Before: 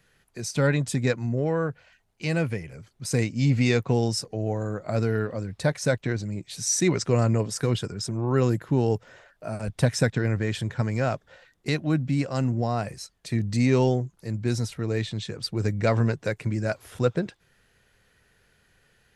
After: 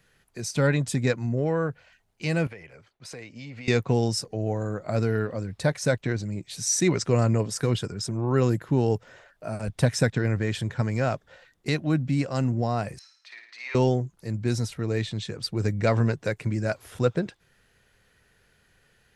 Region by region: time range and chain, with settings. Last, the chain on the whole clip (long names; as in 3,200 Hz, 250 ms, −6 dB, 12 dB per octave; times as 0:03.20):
0:02.47–0:03.68: noise gate with hold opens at −48 dBFS, closes at −51 dBFS + three-way crossover with the lows and the highs turned down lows −13 dB, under 420 Hz, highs −14 dB, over 4,500 Hz + downward compressor 5 to 1, threshold −37 dBFS
0:12.99–0:13.75: high-pass filter 1,000 Hz 24 dB per octave + high-frequency loss of the air 260 metres + flutter between parallel walls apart 9.5 metres, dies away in 0.62 s
whole clip: no processing